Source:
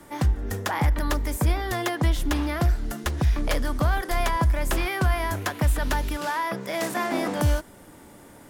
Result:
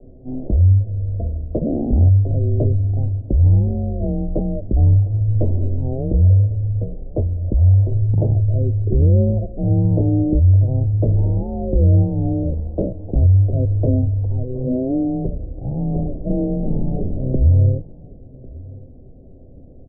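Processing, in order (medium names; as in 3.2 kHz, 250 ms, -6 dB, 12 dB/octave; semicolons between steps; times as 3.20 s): steep low-pass 1.7 kHz 48 dB/octave; frequency shift -280 Hz; delay 469 ms -22.5 dB; speed mistake 78 rpm record played at 33 rpm; trim +7.5 dB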